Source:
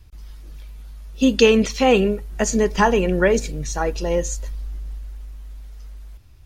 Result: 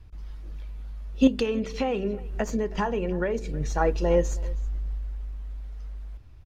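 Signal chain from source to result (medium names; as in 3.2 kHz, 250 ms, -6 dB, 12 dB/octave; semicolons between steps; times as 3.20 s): tracing distortion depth 0.031 ms; low-pass 1.8 kHz 6 dB/octave; de-hum 63.39 Hz, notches 7; 1.27–3.61 s: compression 6:1, threshold -24 dBFS, peak gain reduction 13.5 dB; delay 320 ms -21.5 dB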